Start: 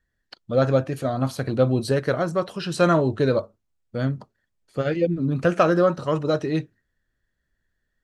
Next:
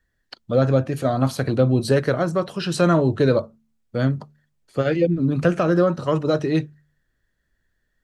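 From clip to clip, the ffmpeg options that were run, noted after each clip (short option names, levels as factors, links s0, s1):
-filter_complex "[0:a]bandreject=f=74.4:t=h:w=4,bandreject=f=148.8:t=h:w=4,bandreject=f=223.2:t=h:w=4,acrossover=split=340[s0][s1];[s1]alimiter=limit=0.158:level=0:latency=1:release=319[s2];[s0][s2]amix=inputs=2:normalize=0,volume=1.58"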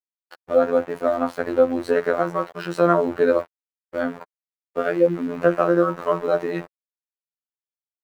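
-filter_complex "[0:a]aeval=exprs='val(0)*gte(abs(val(0)),0.0266)':c=same,acrossover=split=360 2100:gain=0.158 1 0.158[s0][s1][s2];[s0][s1][s2]amix=inputs=3:normalize=0,afftfilt=real='hypot(re,im)*cos(PI*b)':imag='0':win_size=2048:overlap=0.75,volume=2.11"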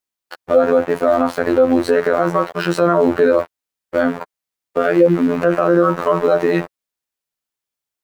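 -af "alimiter=level_in=3.76:limit=0.891:release=50:level=0:latency=1,volume=0.891"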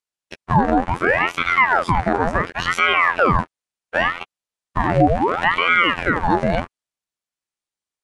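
-af "aresample=22050,aresample=44100,aeval=exprs='val(0)*sin(2*PI*1000*n/s+1000*0.8/0.7*sin(2*PI*0.7*n/s))':c=same"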